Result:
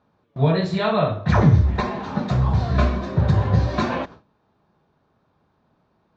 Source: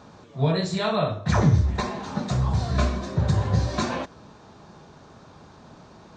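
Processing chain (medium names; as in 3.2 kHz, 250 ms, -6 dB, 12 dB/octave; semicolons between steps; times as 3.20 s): low-pass 3.3 kHz 12 dB/octave; gate with hold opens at -36 dBFS; trim +4 dB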